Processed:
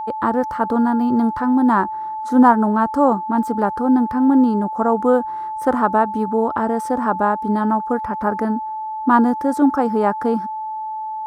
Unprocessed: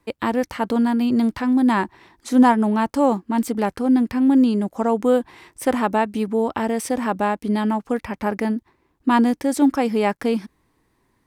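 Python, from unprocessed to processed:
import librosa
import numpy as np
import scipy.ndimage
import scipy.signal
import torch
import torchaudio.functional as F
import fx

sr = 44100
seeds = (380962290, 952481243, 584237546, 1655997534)

y = fx.high_shelf_res(x, sr, hz=1800.0, db=-9.0, q=3.0)
y = y + 10.0 ** (-25.0 / 20.0) * np.sin(2.0 * np.pi * 870.0 * np.arange(len(y)) / sr)
y = F.gain(torch.from_numpy(y), 1.0).numpy()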